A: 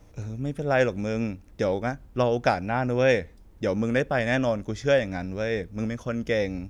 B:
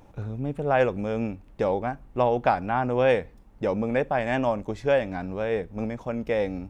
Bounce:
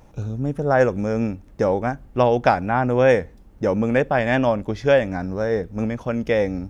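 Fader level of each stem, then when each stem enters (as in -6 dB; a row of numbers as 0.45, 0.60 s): -1.5, +1.0 dB; 0.00, 0.00 s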